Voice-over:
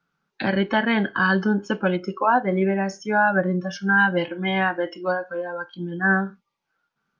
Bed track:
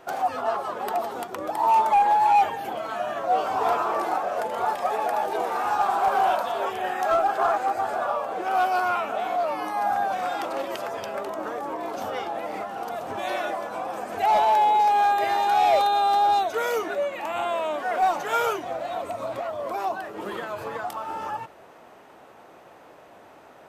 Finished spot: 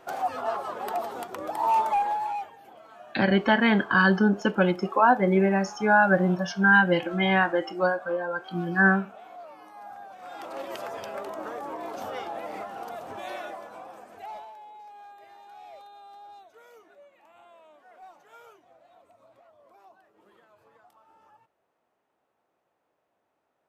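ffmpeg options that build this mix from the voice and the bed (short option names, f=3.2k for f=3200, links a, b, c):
-filter_complex "[0:a]adelay=2750,volume=0dB[a];[1:a]volume=11dB,afade=t=out:st=1.78:d=0.69:silence=0.16788,afade=t=in:st=10.18:d=0.59:silence=0.188365,afade=t=out:st=12.63:d=1.9:silence=0.0707946[b];[a][b]amix=inputs=2:normalize=0"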